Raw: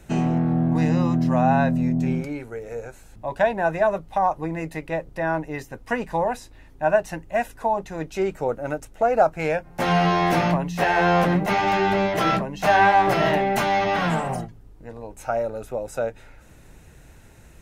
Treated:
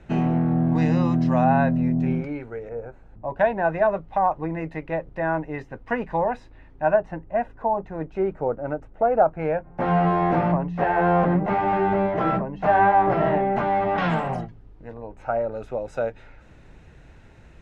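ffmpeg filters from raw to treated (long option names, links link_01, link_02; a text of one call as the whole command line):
ffmpeg -i in.wav -af "asetnsamples=nb_out_samples=441:pad=0,asendcmd='0.67 lowpass f 4900;1.44 lowpass f 2500;2.69 lowpass f 1200;3.39 lowpass f 2300;6.94 lowpass f 1300;13.98 lowpass f 3400;14.94 lowpass f 2000;15.52 lowpass f 3700',lowpass=2900" out.wav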